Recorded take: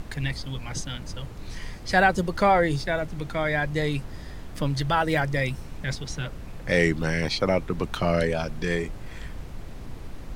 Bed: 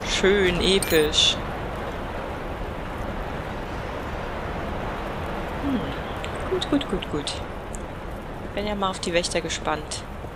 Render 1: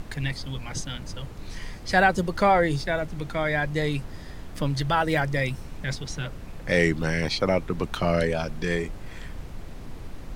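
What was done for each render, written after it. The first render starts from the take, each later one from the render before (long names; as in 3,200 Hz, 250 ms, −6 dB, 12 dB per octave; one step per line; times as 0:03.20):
hum removal 60 Hz, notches 2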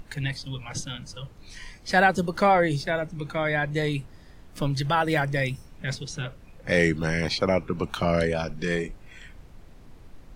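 noise reduction from a noise print 10 dB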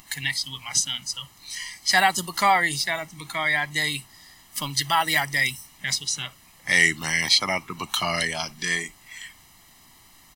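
spectral tilt +4.5 dB per octave
comb filter 1 ms, depth 74%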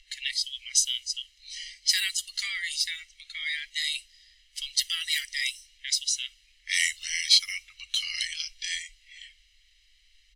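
inverse Chebyshev band-stop filter 140–860 Hz, stop band 60 dB
low-pass that shuts in the quiet parts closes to 2,900 Hz, open at −21 dBFS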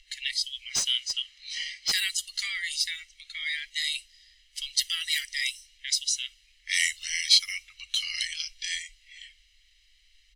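0:00.72–0:01.92: mid-hump overdrive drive 19 dB, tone 1,500 Hz, clips at −6.5 dBFS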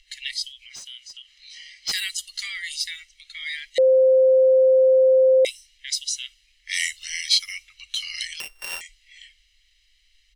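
0:00.51–0:01.87: downward compressor 2.5 to 1, threshold −43 dBFS
0:03.78–0:05.45: beep over 522 Hz −12 dBFS
0:08.40–0:08.81: samples sorted by size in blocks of 16 samples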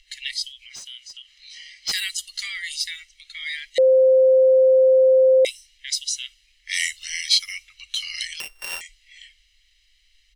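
level +1 dB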